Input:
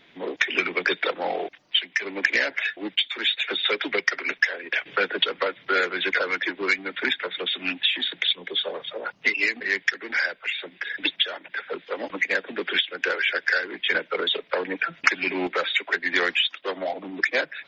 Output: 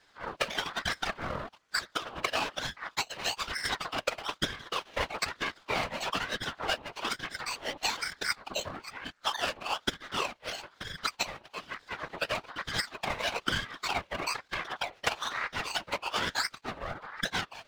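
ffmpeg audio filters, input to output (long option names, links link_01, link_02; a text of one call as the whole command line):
ffmpeg -i in.wav -af "aeval=exprs='max(val(0),0)':channel_layout=same,afftfilt=real='hypot(re,im)*cos(2*PI*random(0))':imag='hypot(re,im)*sin(2*PI*random(1))':win_size=512:overlap=0.75,aeval=exprs='val(0)*sin(2*PI*1100*n/s+1100*0.5/1.1*sin(2*PI*1.1*n/s))':channel_layout=same,volume=4dB" out.wav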